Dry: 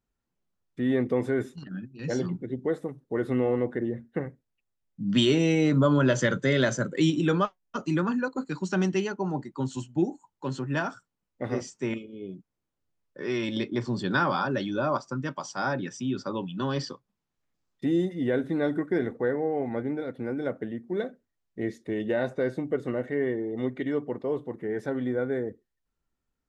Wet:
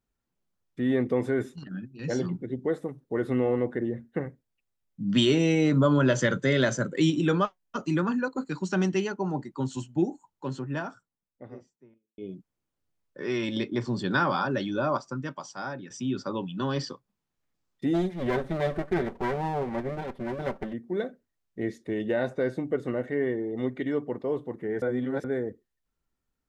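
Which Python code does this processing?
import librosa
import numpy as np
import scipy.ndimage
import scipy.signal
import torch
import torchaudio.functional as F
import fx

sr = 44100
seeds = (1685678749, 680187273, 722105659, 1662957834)

y = fx.studio_fade_out(x, sr, start_s=9.95, length_s=2.23)
y = fx.lower_of_two(y, sr, delay_ms=5.2, at=(17.93, 20.72), fade=0.02)
y = fx.edit(y, sr, fx.fade_out_to(start_s=14.9, length_s=1.0, floor_db=-10.5),
    fx.reverse_span(start_s=24.82, length_s=0.42), tone=tone)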